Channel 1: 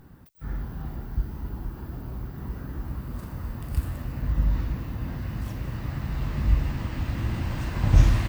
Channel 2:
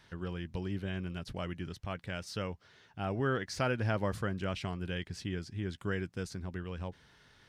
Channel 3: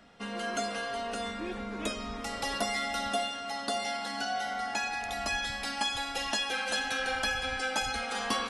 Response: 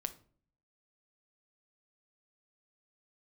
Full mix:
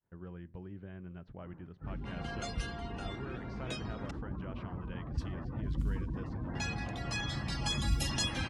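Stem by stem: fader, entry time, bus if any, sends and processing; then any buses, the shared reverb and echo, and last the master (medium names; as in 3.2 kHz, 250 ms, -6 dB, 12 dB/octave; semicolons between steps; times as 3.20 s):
-3.0 dB, 1.40 s, send -15 dB, spectral gate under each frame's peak -30 dB strong; bass shelf 110 Hz -11.5 dB; modulation noise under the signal 35 dB
-9.5 dB, 0.00 s, send -8.5 dB, compression, threshold -34 dBFS, peak gain reduction 8 dB; expander -53 dBFS
+2.0 dB, 1.85 s, muted 4.11–6.55 s, send -10.5 dB, pre-emphasis filter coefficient 0.8; reverb removal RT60 0.59 s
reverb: on, pre-delay 6 ms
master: level-controlled noise filter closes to 920 Hz, open at -26.5 dBFS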